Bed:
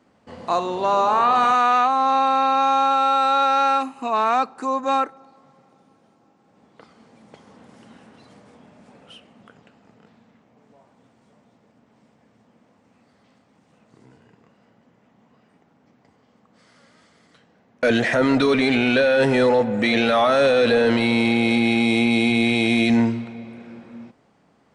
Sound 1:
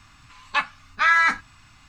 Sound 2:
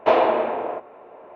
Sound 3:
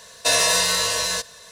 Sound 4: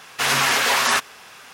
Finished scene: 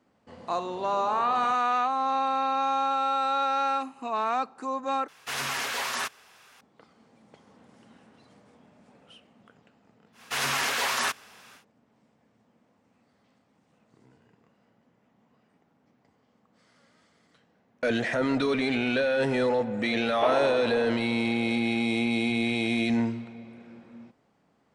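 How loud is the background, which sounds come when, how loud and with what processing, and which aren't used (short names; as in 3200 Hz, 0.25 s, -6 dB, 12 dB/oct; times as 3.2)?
bed -8 dB
5.08 replace with 4 -12 dB
10.12 add 4 -8.5 dB, fades 0.10 s
20.15 add 2 -10.5 dB
not used: 1, 3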